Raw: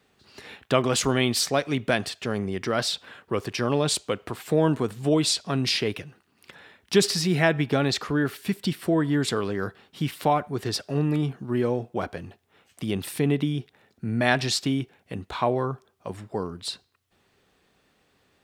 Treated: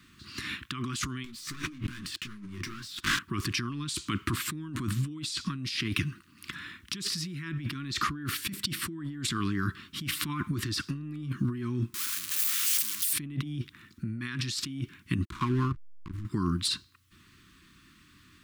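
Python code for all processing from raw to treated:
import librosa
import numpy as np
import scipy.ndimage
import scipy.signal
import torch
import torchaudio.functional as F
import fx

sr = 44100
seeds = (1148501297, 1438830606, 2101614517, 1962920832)

y = fx.chain(x, sr, fx.leveller(passes=5),
    fx.detune_double(cents=38), at=(1.24, 3.19))
y = fx.chain(y, sr, fx.clip_1bit(),
    fx.differentiator(), at=(11.94, 13.13))
y = fx.chain(y, sr, fx.level_steps(step_db=15),
    fx.backlash(play_db=-38.0), at=(15.25, 16.25))
y = scipy.signal.sosfilt(scipy.signal.ellip(3, 1.0, 40, [330.0, 1100.0], 'bandstop', fs=sr, output='sos'), y)
y = fx.low_shelf(y, sr, hz=240.0, db=3.5)
y = fx.over_compress(y, sr, threshold_db=-34.0, ratio=-1.0)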